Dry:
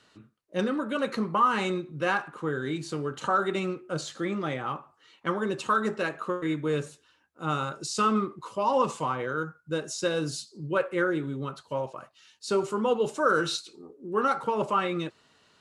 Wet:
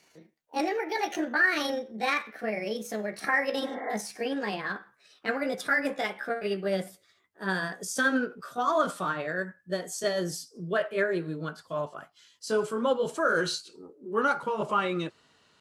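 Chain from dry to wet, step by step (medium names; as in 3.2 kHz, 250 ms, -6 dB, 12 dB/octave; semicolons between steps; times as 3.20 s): pitch bend over the whole clip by +7.5 st ending unshifted; spectral replace 3.64–3.88 s, 250–2300 Hz both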